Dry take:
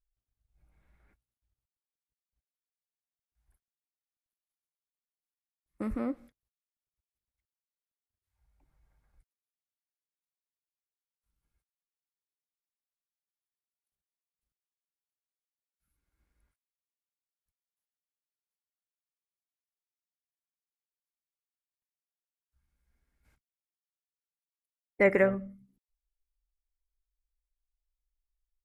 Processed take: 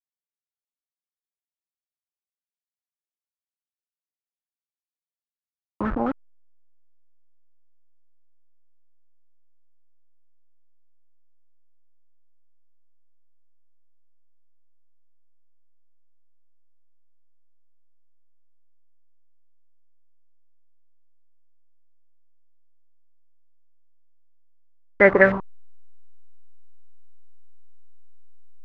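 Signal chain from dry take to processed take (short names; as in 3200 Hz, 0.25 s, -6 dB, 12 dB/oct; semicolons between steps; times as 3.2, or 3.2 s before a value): level-crossing sampler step -32 dBFS; stepped low-pass 9.4 Hz 830–1800 Hz; gain +7 dB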